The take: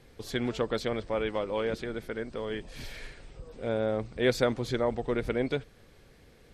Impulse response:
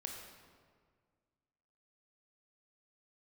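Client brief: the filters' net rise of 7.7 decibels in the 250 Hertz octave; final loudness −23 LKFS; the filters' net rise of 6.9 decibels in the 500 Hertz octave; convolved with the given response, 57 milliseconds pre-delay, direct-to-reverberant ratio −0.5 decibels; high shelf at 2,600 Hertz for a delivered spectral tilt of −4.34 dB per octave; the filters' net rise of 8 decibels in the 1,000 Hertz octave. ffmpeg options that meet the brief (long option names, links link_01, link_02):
-filter_complex "[0:a]equalizer=frequency=250:width_type=o:gain=7.5,equalizer=frequency=500:width_type=o:gain=4,equalizer=frequency=1000:width_type=o:gain=7.5,highshelf=frequency=2600:gain=7.5,asplit=2[link_01][link_02];[1:a]atrim=start_sample=2205,adelay=57[link_03];[link_02][link_03]afir=irnorm=-1:irlink=0,volume=2.5dB[link_04];[link_01][link_04]amix=inputs=2:normalize=0,volume=-2dB"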